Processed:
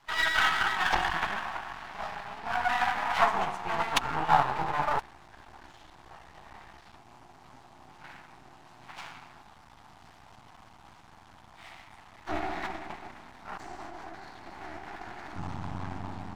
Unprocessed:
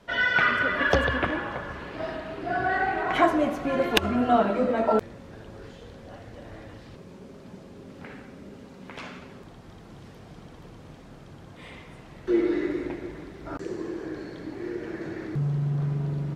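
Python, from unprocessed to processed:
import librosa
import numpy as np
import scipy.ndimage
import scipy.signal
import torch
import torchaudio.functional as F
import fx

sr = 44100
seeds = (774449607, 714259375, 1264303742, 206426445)

y = fx.pitch_keep_formants(x, sr, semitones=-7.5)
y = np.maximum(y, 0.0)
y = fx.low_shelf_res(y, sr, hz=640.0, db=-8.0, q=3.0)
y = y * librosa.db_to_amplitude(1.5)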